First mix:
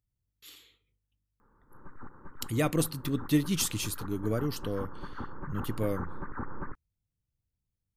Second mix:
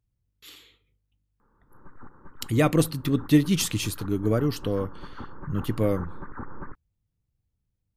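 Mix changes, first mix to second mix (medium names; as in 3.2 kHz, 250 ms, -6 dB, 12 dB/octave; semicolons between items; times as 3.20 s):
speech +7.0 dB; master: add treble shelf 4.7 kHz -7 dB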